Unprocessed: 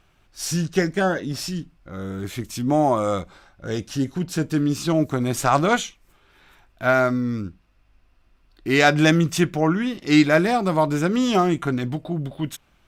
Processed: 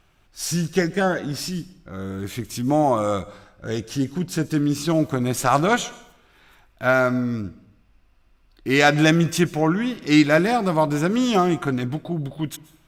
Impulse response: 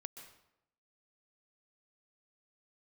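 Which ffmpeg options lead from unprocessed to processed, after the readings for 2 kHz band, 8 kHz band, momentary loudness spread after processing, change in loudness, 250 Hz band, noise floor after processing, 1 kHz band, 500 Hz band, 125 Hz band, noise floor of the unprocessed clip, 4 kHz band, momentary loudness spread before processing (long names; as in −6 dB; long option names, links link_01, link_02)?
0.0 dB, +1.0 dB, 14 LU, 0.0 dB, 0.0 dB, −58 dBFS, 0.0 dB, 0.0 dB, 0.0 dB, −61 dBFS, +0.5 dB, 13 LU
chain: -filter_complex "[0:a]asplit=2[link_01][link_02];[1:a]atrim=start_sample=2205,highshelf=frequency=8100:gain=8.5[link_03];[link_02][link_03]afir=irnorm=-1:irlink=0,volume=-6dB[link_04];[link_01][link_04]amix=inputs=2:normalize=0,volume=-2dB"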